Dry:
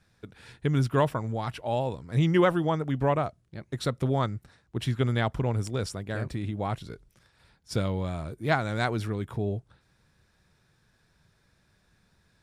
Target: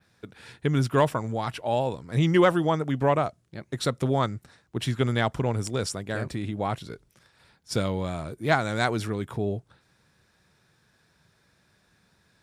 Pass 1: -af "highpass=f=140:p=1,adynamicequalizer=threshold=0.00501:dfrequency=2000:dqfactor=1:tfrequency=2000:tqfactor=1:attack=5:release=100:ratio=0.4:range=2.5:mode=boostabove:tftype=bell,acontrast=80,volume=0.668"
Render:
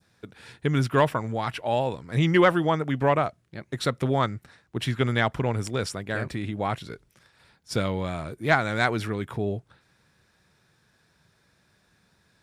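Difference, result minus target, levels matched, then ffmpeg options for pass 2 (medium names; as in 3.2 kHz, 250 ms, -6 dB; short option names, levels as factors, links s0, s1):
8 kHz band -3.5 dB
-af "highpass=f=140:p=1,adynamicequalizer=threshold=0.00501:dfrequency=7400:dqfactor=1:tfrequency=7400:tqfactor=1:attack=5:release=100:ratio=0.4:range=2.5:mode=boostabove:tftype=bell,acontrast=80,volume=0.668"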